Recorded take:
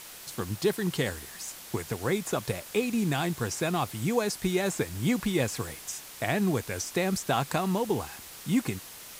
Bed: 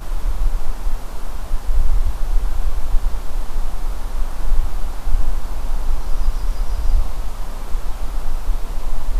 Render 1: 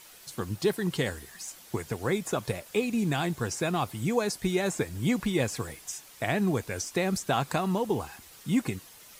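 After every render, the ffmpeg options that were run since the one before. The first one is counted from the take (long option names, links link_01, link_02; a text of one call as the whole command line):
ffmpeg -i in.wav -af "afftdn=noise_reduction=8:noise_floor=-46" out.wav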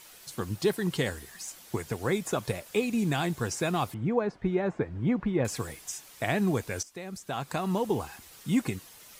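ffmpeg -i in.wav -filter_complex "[0:a]asettb=1/sr,asplit=3[link_01][link_02][link_03];[link_01]atrim=end=3.944[link_04];[link_02]atrim=start=3.94:end=5.45,asetpts=PTS-STARTPTS,afade=type=in:duration=0.004:curve=qsin,afade=type=out:start_time=1.506:duration=0.004:curve=qsin,lowpass=1500[link_05];[link_03]atrim=start=5.446[link_06];[link_04][link_05]acrossfade=duration=0.004:curve1=hsin:curve2=qsin[link_07];[link_07][link_06]acrossfade=duration=0.004:curve1=qsin:curve2=hsin,asplit=2[link_08][link_09];[link_08]atrim=end=6.83,asetpts=PTS-STARTPTS,afade=type=out:start_time=6.826:duration=0.004:curve=hsin:silence=0.199526[link_10];[link_09]atrim=start=6.83,asetpts=PTS-STARTPTS,afade=type=in:duration=0.94:curve=qua:silence=0.199526[link_11];[link_10][link_11]concat=n=2:v=0:a=1" out.wav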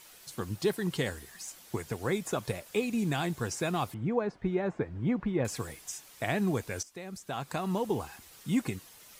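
ffmpeg -i in.wav -af "volume=-2.5dB" out.wav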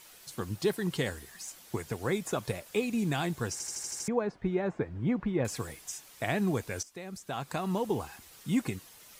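ffmpeg -i in.wav -filter_complex "[0:a]asplit=8[link_01][link_02][link_03][link_04][link_05][link_06][link_07][link_08];[link_01]atrim=end=3.602[link_09];[link_02]atrim=start=3.518:end=3.602[link_10];[link_03]atrim=start=3.518:end=3.602[link_11];[link_04]atrim=start=3.518:end=3.602[link_12];[link_05]atrim=start=3.518:end=3.602[link_13];[link_06]atrim=start=3.518:end=3.602[link_14];[link_07]atrim=start=3.518:end=3.602[link_15];[link_08]atrim=start=4.078[link_16];[link_09][link_10]acrossfade=duration=0.004:curve1=hsin:curve2=hsin[link_17];[link_17][link_11]acrossfade=duration=0.004:curve1=hsin:curve2=hsin[link_18];[link_18][link_12]acrossfade=duration=0.004:curve1=hsin:curve2=hsin[link_19];[link_19][link_13]acrossfade=duration=0.004:curve1=hsin:curve2=hsin[link_20];[link_20][link_14]acrossfade=duration=0.004:curve1=hsin:curve2=hsin[link_21];[link_21][link_15]acrossfade=duration=0.004:curve1=hsin:curve2=hsin[link_22];[link_22][link_16]acrossfade=duration=0.004:curve1=hsin:curve2=hsin" out.wav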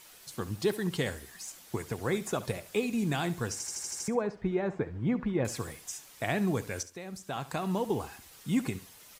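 ffmpeg -i in.wav -af "aecho=1:1:69|138|207:0.158|0.0412|0.0107" out.wav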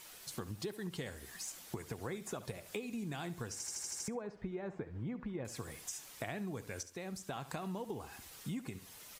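ffmpeg -i in.wav -af "acompressor=threshold=-39dB:ratio=6" out.wav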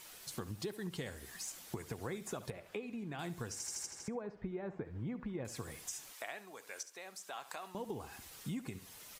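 ffmpeg -i in.wav -filter_complex "[0:a]asettb=1/sr,asplit=3[link_01][link_02][link_03];[link_01]atrim=end=2.504[link_04];[link_02]atrim=start=2.5:end=3.19,asetpts=PTS-STARTPTS,afade=type=in:duration=0.004:curve=qsin,afade=type=out:start_time=0.686:duration=0.004:curve=qsin,bass=frequency=250:gain=-4,treble=frequency=4000:gain=-15[link_05];[link_03]atrim=start=3.186[link_06];[link_04][link_05]acrossfade=duration=0.004:curve1=hsin:curve2=qsin[link_07];[link_07][link_06]acrossfade=duration=0.004:curve1=qsin:curve2=hsin,asettb=1/sr,asplit=3[link_08][link_09][link_10];[link_08]atrim=end=3.864[link_11];[link_09]atrim=start=3.86:end=4.85,asetpts=PTS-STARTPTS,afade=type=in:duration=0.004:curve=qsin,afade=type=out:start_time=0.986:duration=0.004:curve=qsin,lowpass=frequency=2900:poles=1[link_12];[link_10]atrim=start=4.846[link_13];[link_11][link_12]acrossfade=duration=0.004:curve1=hsin:curve2=qsin[link_14];[link_14][link_13]acrossfade=duration=0.004:curve1=qsin:curve2=hsin,asettb=1/sr,asplit=3[link_15][link_16][link_17];[link_15]atrim=end=6.134[link_18];[link_16]atrim=start=6.13:end=7.75,asetpts=PTS-STARTPTS,afade=type=in:duration=0.004:curve=qsin,afade=type=out:start_time=1.616:duration=0.004:curve=qsin,highpass=660[link_19];[link_17]atrim=start=7.746[link_20];[link_18][link_19]acrossfade=duration=0.004:curve1=hsin:curve2=qsin[link_21];[link_21][link_20]acrossfade=duration=0.004:curve1=qsin:curve2=hsin" out.wav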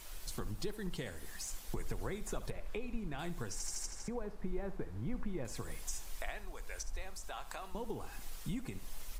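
ffmpeg -i in.wav -i bed.wav -filter_complex "[1:a]volume=-27dB[link_01];[0:a][link_01]amix=inputs=2:normalize=0" out.wav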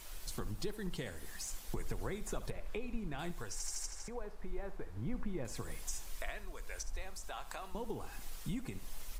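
ffmpeg -i in.wav -filter_complex "[0:a]asettb=1/sr,asplit=3[link_01][link_02][link_03];[link_01]atrim=end=3.314[link_04];[link_02]atrim=start=3.31:end=4.97,asetpts=PTS-STARTPTS,afade=type=in:duration=0.004:curve=qsin,afade=type=out:start_time=1.656:duration=0.004:curve=qsin,equalizer=frequency=190:width=0.76:gain=-9[link_05];[link_03]atrim=start=4.966[link_06];[link_04][link_05]acrossfade=duration=0.004:curve1=hsin:curve2=qsin[link_07];[link_07][link_06]acrossfade=duration=0.004:curve1=qsin:curve2=hsin,asettb=1/sr,asplit=3[link_08][link_09][link_10];[link_08]atrim=end=6.074[link_11];[link_09]atrim=start=6.07:end=6.67,asetpts=PTS-STARTPTS,afade=type=in:duration=0.004:curve=qsin,afade=type=out:start_time=0.596:duration=0.004:curve=qsin,asuperstop=centerf=800:order=4:qfactor=6.1[link_12];[link_10]atrim=start=6.666[link_13];[link_11][link_12]acrossfade=duration=0.004:curve1=hsin:curve2=qsin[link_14];[link_14][link_13]acrossfade=duration=0.004:curve1=qsin:curve2=hsin" out.wav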